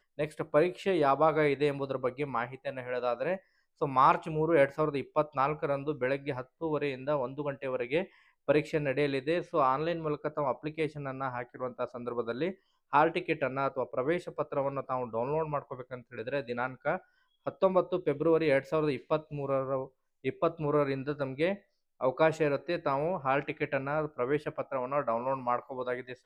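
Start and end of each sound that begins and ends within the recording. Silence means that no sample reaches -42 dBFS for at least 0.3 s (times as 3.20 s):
3.81–8.05 s
8.48–12.53 s
12.93–16.98 s
17.47–19.87 s
20.24–21.56 s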